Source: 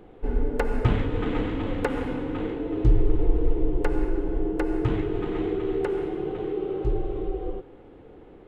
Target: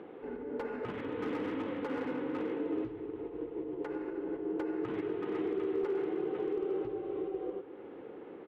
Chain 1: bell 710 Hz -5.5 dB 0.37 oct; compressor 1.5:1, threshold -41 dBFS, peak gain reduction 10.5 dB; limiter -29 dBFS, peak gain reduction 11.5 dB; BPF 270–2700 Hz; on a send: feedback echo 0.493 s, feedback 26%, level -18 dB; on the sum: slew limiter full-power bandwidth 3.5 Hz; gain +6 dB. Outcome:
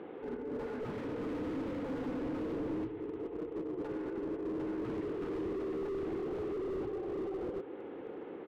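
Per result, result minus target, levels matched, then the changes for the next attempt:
slew limiter: distortion +20 dB; compressor: peak gain reduction -3.5 dB
change: slew limiter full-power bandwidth 9 Hz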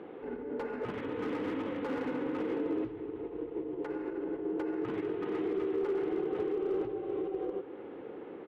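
compressor: peak gain reduction -3.5 dB
change: compressor 1.5:1, threshold -52 dBFS, peak gain reduction 14 dB

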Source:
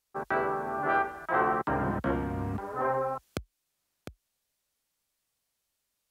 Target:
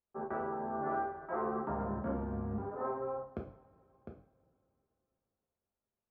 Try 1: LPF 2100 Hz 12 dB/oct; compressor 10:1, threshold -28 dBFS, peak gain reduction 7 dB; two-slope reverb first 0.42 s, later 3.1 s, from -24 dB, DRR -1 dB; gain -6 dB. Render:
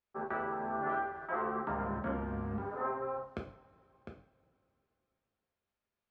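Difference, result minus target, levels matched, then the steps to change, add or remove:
2000 Hz band +6.5 dB
change: LPF 900 Hz 12 dB/oct

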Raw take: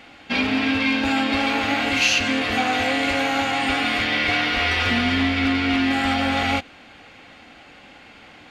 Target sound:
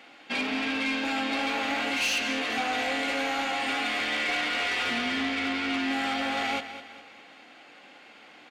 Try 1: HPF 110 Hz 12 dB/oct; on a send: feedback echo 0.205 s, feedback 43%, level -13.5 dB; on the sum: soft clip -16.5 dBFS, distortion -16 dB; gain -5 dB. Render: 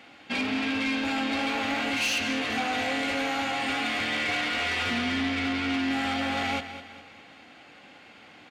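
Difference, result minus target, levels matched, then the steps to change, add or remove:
125 Hz band +9.5 dB
change: HPF 270 Hz 12 dB/oct

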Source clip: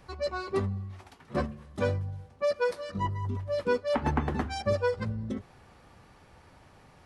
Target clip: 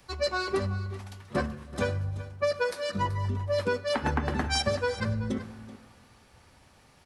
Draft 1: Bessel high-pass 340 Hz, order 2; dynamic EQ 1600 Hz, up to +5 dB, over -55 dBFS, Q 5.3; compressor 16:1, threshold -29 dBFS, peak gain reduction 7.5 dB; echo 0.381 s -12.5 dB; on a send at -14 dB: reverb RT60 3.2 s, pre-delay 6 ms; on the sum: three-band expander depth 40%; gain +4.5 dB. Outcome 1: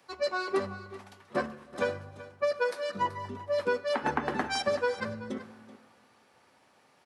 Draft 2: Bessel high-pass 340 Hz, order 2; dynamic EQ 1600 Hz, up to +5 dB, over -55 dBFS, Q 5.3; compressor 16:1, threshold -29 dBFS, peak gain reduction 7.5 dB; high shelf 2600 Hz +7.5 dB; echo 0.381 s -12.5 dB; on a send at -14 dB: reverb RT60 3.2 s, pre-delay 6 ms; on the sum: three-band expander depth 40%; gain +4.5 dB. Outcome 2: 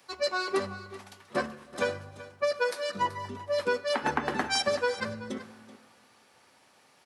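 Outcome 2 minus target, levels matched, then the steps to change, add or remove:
250 Hz band -3.5 dB
remove: Bessel high-pass 340 Hz, order 2

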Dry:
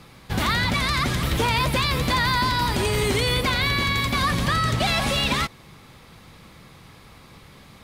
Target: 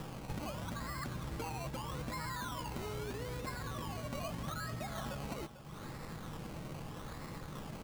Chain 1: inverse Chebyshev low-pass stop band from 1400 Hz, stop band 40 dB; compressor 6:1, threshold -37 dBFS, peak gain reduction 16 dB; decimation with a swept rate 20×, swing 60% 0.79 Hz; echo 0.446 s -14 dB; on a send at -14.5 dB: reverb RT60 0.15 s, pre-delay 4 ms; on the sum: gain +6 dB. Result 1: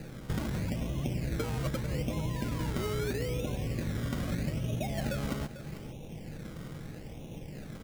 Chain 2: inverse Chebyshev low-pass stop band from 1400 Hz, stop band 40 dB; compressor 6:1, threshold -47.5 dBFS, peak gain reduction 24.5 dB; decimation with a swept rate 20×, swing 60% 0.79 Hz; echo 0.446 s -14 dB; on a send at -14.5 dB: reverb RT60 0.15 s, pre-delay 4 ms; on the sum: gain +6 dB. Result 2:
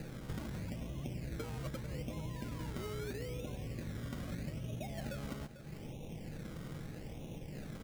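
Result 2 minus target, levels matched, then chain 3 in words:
1000 Hz band -8.5 dB
inverse Chebyshev low-pass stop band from 3200 Hz, stop band 40 dB; compressor 6:1, threshold -47.5 dBFS, peak gain reduction 25 dB; decimation with a swept rate 20×, swing 60% 0.79 Hz; echo 0.446 s -14 dB; on a send at -14.5 dB: reverb RT60 0.15 s, pre-delay 4 ms; on the sum: gain +6 dB

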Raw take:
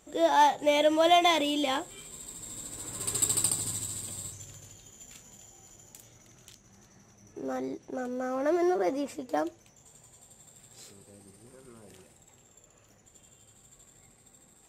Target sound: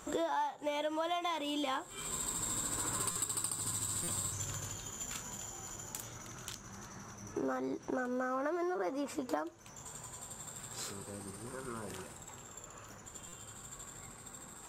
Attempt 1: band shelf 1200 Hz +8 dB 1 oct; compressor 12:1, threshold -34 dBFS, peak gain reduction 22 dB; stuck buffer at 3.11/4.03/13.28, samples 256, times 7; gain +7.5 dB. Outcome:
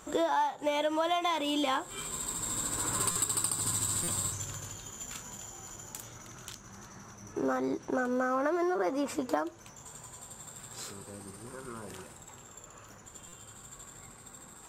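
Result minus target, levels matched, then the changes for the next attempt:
compressor: peak gain reduction -6 dB
change: compressor 12:1, threshold -40.5 dBFS, peak gain reduction 28 dB

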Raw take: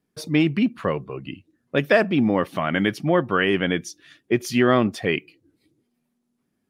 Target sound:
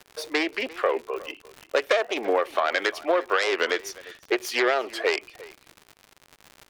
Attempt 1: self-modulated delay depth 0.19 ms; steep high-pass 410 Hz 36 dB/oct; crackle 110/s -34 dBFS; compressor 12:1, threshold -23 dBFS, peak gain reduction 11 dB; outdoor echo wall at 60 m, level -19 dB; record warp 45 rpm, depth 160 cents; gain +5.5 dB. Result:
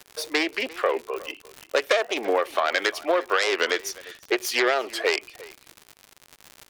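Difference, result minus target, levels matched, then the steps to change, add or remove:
8000 Hz band +4.0 dB
add after compressor: high shelf 4000 Hz -6.5 dB

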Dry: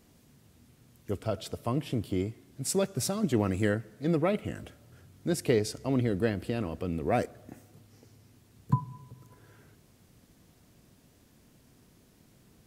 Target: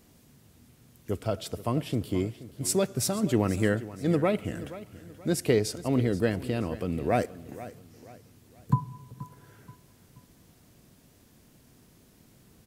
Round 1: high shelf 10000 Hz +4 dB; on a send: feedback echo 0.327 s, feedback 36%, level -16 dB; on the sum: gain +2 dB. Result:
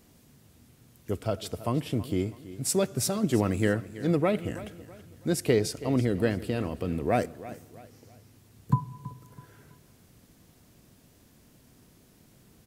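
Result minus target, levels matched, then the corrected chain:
echo 0.152 s early
high shelf 10000 Hz +4 dB; on a send: feedback echo 0.479 s, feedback 36%, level -16 dB; on the sum: gain +2 dB

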